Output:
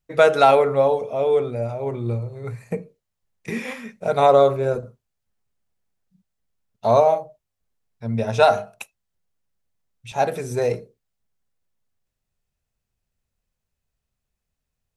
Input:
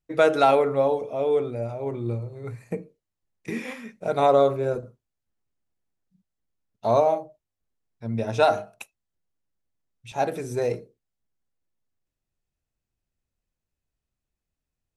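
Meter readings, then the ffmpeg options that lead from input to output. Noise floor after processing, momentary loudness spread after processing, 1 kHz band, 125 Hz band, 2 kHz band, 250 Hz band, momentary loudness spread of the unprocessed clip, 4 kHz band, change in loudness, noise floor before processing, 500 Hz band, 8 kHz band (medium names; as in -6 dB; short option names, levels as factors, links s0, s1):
-81 dBFS, 17 LU, +4.5 dB, +4.5 dB, +4.5 dB, +1.0 dB, 17 LU, +4.5 dB, +4.0 dB, under -85 dBFS, +4.0 dB, no reading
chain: -af "equalizer=f=310:t=o:w=0.26:g=-12,volume=1.68"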